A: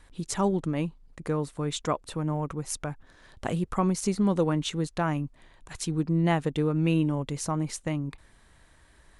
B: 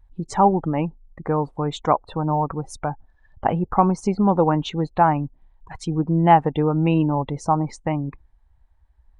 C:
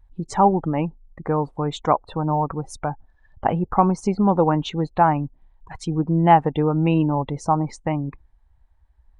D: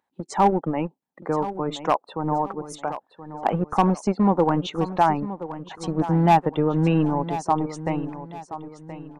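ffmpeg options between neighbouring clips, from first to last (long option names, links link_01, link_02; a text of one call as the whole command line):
ffmpeg -i in.wav -af "aemphasis=mode=reproduction:type=50kf,afftdn=noise_reduction=25:noise_floor=-44,equalizer=frequency=830:width_type=o:width=0.53:gain=14,volume=5dB" out.wav
ffmpeg -i in.wav -af anull out.wav
ffmpeg -i in.wav -filter_complex "[0:a]acrossover=split=220[link_01][link_02];[link_01]acrusher=bits=3:mix=0:aa=0.5[link_03];[link_02]volume=8.5dB,asoftclip=hard,volume=-8.5dB[link_04];[link_03][link_04]amix=inputs=2:normalize=0,aecho=1:1:1025|2050|3075|4100:0.224|0.0806|0.029|0.0104,volume=-1.5dB" out.wav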